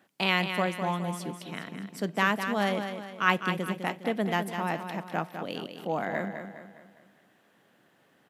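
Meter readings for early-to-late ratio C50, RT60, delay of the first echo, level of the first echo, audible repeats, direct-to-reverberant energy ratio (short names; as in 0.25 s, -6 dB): none, none, 0.205 s, -8.0 dB, 4, none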